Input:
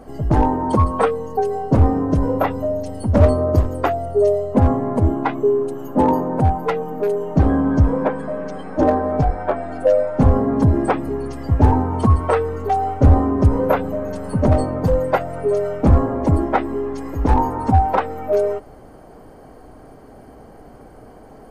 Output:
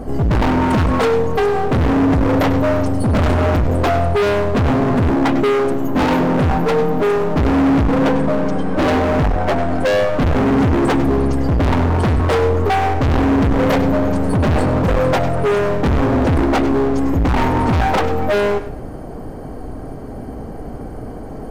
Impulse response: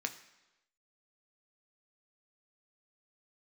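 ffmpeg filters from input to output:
-filter_complex "[0:a]lowshelf=f=370:g=10,volume=10,asoftclip=hard,volume=0.1,asplit=2[s0][s1];[1:a]atrim=start_sample=2205,adelay=99[s2];[s1][s2]afir=irnorm=-1:irlink=0,volume=0.237[s3];[s0][s3]amix=inputs=2:normalize=0,volume=2.11"

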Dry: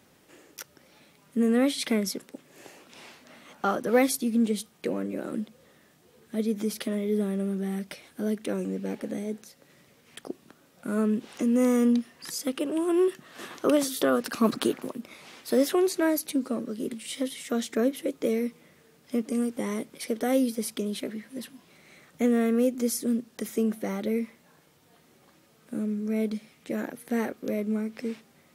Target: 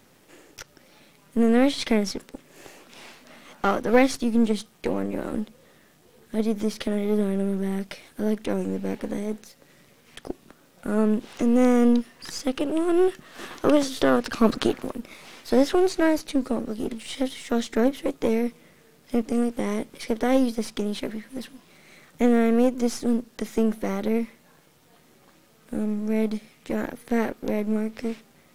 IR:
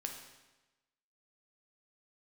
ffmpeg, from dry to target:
-filter_complex "[0:a]aeval=exprs='if(lt(val(0),0),0.447*val(0),val(0))':c=same,acrossover=split=7200[s0][s1];[s1]acompressor=threshold=0.00178:ratio=4:attack=1:release=60[s2];[s0][s2]amix=inputs=2:normalize=0,volume=1.88"

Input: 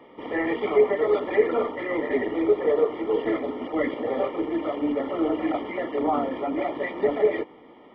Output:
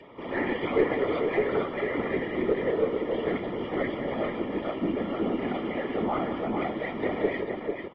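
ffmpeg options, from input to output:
-filter_complex "[0:a]adynamicequalizer=threshold=0.0126:dfrequency=920:dqfactor=0.97:tfrequency=920:tqfactor=0.97:attack=5:release=100:ratio=0.375:range=2.5:mode=cutabove:tftype=bell,afftfilt=real='hypot(re,im)*cos(2*PI*random(0))':imag='hypot(re,im)*sin(2*PI*random(1))':win_size=512:overlap=0.75,acrossover=split=400|510[s0][s1][s2];[s1]acompressor=threshold=0.002:ratio=10[s3];[s0][s3][s2]amix=inputs=3:normalize=0,aecho=1:1:70|186|446:0.133|0.266|0.531,aeval=exprs='0.2*(cos(1*acos(clip(val(0)/0.2,-1,1)))-cos(1*PI/2))+0.0631*(cos(2*acos(clip(val(0)/0.2,-1,1)))-cos(2*PI/2))+0.01*(cos(3*acos(clip(val(0)/0.2,-1,1)))-cos(3*PI/2))+0.0251*(cos(4*acos(clip(val(0)/0.2,-1,1)))-cos(4*PI/2))+0.00562*(cos(6*acos(clip(val(0)/0.2,-1,1)))-cos(6*PI/2))':c=same,asplit=2[s4][s5];[s5]asoftclip=type=tanh:threshold=0.0473,volume=0.668[s6];[s4][s6]amix=inputs=2:normalize=0,acompressor=mode=upward:threshold=0.00398:ratio=2.5,volume=1.26" -ar 32000 -c:a aac -b:a 24k

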